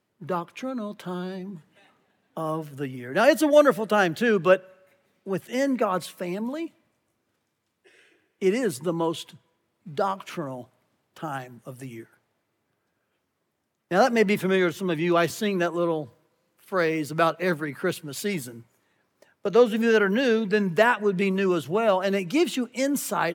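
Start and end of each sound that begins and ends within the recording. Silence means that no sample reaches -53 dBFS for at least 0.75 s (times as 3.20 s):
7.85–12.14 s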